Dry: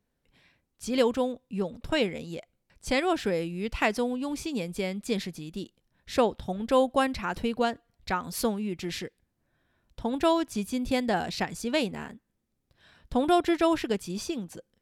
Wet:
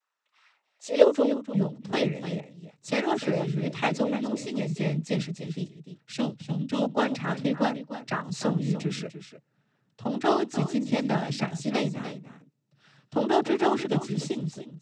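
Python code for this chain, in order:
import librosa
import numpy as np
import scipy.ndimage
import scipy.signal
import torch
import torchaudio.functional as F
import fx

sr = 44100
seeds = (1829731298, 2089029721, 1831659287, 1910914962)

y = fx.noise_vocoder(x, sr, seeds[0], bands=12)
y = fx.band_shelf(y, sr, hz=780.0, db=-10.5, octaves=2.6, at=(6.12, 6.82))
y = y + 10.0 ** (-12.0 / 20.0) * np.pad(y, (int(298 * sr / 1000.0), 0))[:len(y)]
y = fx.filter_sweep_highpass(y, sr, from_hz=1100.0, to_hz=140.0, start_s=0.43, end_s=1.72, q=3.0)
y = y * 10.0 ** (-1.0 / 20.0)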